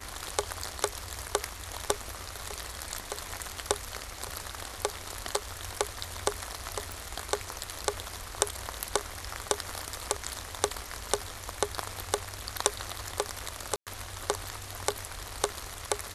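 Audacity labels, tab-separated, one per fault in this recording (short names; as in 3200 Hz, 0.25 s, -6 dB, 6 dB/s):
6.920000	6.920000	pop
13.760000	13.870000	gap 0.107 s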